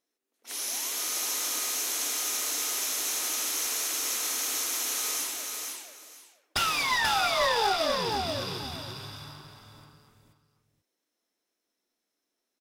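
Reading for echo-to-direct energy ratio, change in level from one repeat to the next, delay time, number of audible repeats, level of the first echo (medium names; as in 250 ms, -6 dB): -4.0 dB, -13.5 dB, 485 ms, 2, -4.0 dB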